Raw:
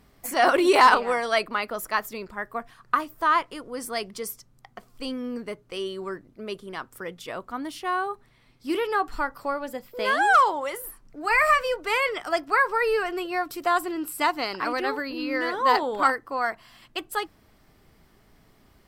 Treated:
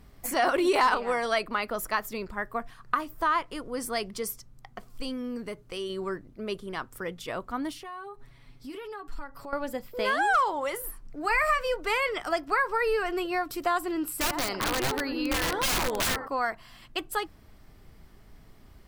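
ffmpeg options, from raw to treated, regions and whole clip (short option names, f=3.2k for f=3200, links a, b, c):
-filter_complex "[0:a]asettb=1/sr,asplit=3[a][b][c];[a]atrim=end=4.904[d];[b]atrim=start=4.9:end=5.9,asetpts=PTS-STARTPTS,afade=t=in:d=0.004:c=qsin,afade=t=out:st=0.996:d=0.004:c=qsin,highshelf=f=4.6k:g=4.5,acompressor=threshold=-38dB:ratio=1.5:attack=3.2:release=140:knee=1:detection=peak[e];[c]atrim=start=5.896[f];[d][e]acrossfade=d=0.004:c1=hsin:c2=qsin[g];[g][f]acrossfade=d=0.004:c1=qsin:c2=hsin,asettb=1/sr,asplit=3[h][i][j];[h]atrim=end=7.734[k];[i]atrim=start=7.73:end=9.53,asetpts=PTS-STARTPTS,afade=t=in:d=0.004:c=qsin,afade=t=out:st=1.796:d=0.004:c=qsin,aecho=1:1:7.2:0.61,atrim=end_sample=79380,acompressor=threshold=-43dB:ratio=3:attack=3.2:release=140:knee=1:detection=peak[l];[j]atrim=start=9.526[m];[k][l]acrossfade=d=0.004:c1=hsin:c2=qsin[n];[n][m]acrossfade=d=0.004:c1=qsin:c2=hsin,asettb=1/sr,asplit=3[o][p][q];[o]atrim=end=14.194[r];[p]atrim=start=14.19:end=16.28,asetpts=PTS-STARTPTS,afade=t=in:d=0.004:c=qsin,afade=t=out:st=2.086:d=0.004:c=qsin,asplit=2[s][t];[t]adelay=91,lowpass=f=1k:p=1,volume=-10.5dB,asplit=2[u][v];[v]adelay=91,lowpass=f=1k:p=1,volume=0.54,asplit=2[w][x];[x]adelay=91,lowpass=f=1k:p=1,volume=0.54,asplit=2[y][z];[z]adelay=91,lowpass=f=1k:p=1,volume=0.54,asplit=2[aa][ab];[ab]adelay=91,lowpass=f=1k:p=1,volume=0.54,asplit=2[ac][ad];[ad]adelay=91,lowpass=f=1k:p=1,volume=0.54[ae];[s][u][w][y][aa][ac][ae]amix=inputs=7:normalize=0,atrim=end_sample=92169,aeval=exprs='(mod(10*val(0)+1,2)-1)/10':c=same[af];[q]atrim=start=16.276[ag];[r][af]acrossfade=d=0.004:c1=hsin:c2=qsin[ah];[ah][ag]acrossfade=d=0.004:c1=qsin:c2=hsin,lowshelf=f=100:g=10.5,acompressor=threshold=-25dB:ratio=2"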